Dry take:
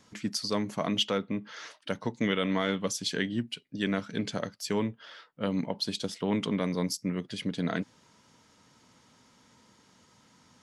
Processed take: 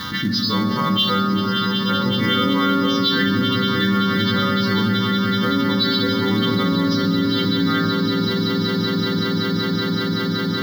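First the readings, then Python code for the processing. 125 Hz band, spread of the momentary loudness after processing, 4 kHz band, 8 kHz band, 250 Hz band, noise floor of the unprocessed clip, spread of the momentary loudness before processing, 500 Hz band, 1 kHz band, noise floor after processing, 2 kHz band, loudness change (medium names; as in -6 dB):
+15.0 dB, 3 LU, +15.5 dB, no reading, +14.0 dB, -63 dBFS, 8 LU, +9.5 dB, +16.5 dB, -22 dBFS, +14.0 dB, +12.5 dB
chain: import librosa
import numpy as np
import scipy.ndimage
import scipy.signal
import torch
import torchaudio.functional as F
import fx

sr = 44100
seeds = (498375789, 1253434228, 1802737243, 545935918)

p1 = fx.freq_snap(x, sr, grid_st=2)
p2 = scipy.signal.sosfilt(scipy.signal.cheby1(4, 1.0, 4000.0, 'lowpass', fs=sr, output='sos'), p1)
p3 = fx.peak_eq(p2, sr, hz=440.0, db=-5.5, octaves=0.21)
p4 = fx.quant_companded(p3, sr, bits=4)
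p5 = p3 + (p4 * 10.0 ** (-6.5 / 20.0))
p6 = fx.fixed_phaser(p5, sr, hz=2500.0, stages=6)
p7 = p6 + fx.echo_swell(p6, sr, ms=189, loudest=8, wet_db=-13, dry=0)
p8 = fx.rev_fdn(p7, sr, rt60_s=1.7, lf_ratio=1.5, hf_ratio=0.5, size_ms=12.0, drr_db=0.0)
p9 = fx.env_flatten(p8, sr, amount_pct=70)
y = p9 * 10.0 ** (2.5 / 20.0)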